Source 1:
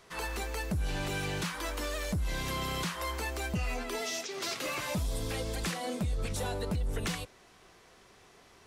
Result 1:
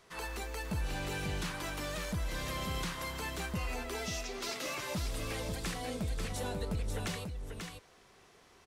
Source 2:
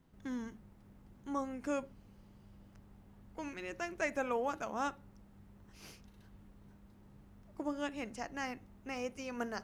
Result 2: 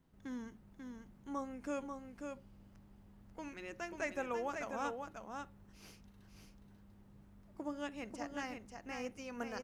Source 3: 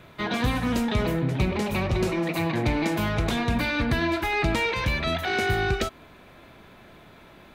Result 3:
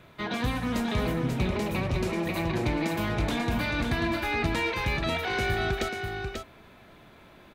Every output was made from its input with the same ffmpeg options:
-af "aecho=1:1:540:0.531,volume=-4dB"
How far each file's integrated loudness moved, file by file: −3.5, −4.0, −3.0 LU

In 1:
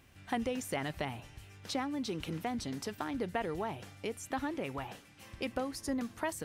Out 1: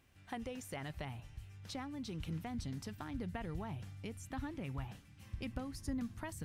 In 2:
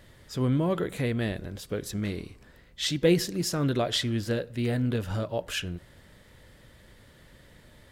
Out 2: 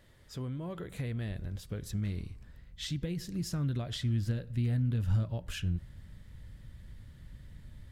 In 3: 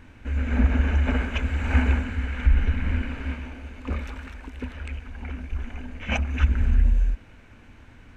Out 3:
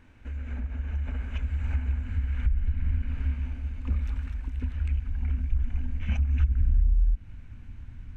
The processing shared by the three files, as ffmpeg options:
-af "acompressor=threshold=-28dB:ratio=6,asubboost=boost=8:cutoff=160,volume=-8dB"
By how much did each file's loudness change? −6.5, −6.0, −4.0 LU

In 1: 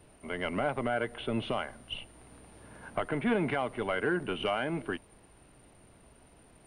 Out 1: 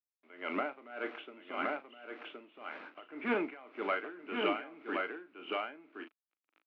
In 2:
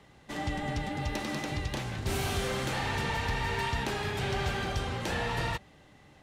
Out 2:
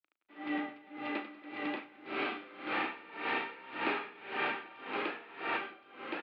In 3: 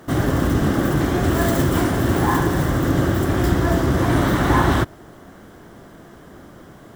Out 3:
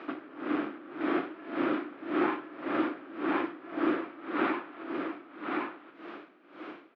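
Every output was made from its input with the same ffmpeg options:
-filter_complex "[0:a]acompressor=threshold=-21dB:ratio=6,aresample=11025,asoftclip=type=hard:threshold=-23.5dB,aresample=44100,acrusher=bits=7:mix=0:aa=0.000001,highpass=frequency=260:width=0.5412,highpass=frequency=260:width=1.3066,equalizer=frequency=310:width_type=q:width=4:gain=8,equalizer=frequency=1300:width_type=q:width=4:gain=8,equalizer=frequency=2400:width_type=q:width=4:gain=8,lowpass=frequency=3200:width=0.5412,lowpass=frequency=3200:width=1.3066,asplit=2[link_01][link_02];[link_02]adelay=37,volume=-10.5dB[link_03];[link_01][link_03]amix=inputs=2:normalize=0,asplit=2[link_04][link_05];[link_05]aecho=0:1:1069:0.668[link_06];[link_04][link_06]amix=inputs=2:normalize=0,aeval=exprs='val(0)*pow(10,-21*(0.5-0.5*cos(2*PI*1.8*n/s))/20)':channel_layout=same,volume=-2.5dB"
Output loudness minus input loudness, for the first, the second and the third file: −5.0, −5.0, −14.0 LU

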